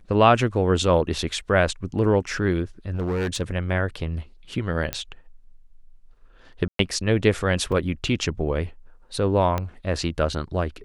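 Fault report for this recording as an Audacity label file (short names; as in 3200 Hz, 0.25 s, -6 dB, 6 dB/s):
2.910000	3.420000	clipped -21.5 dBFS
4.930000	4.930000	pop -9 dBFS
6.680000	6.790000	gap 0.113 s
7.720000	7.720000	gap 4 ms
9.580000	9.580000	pop -12 dBFS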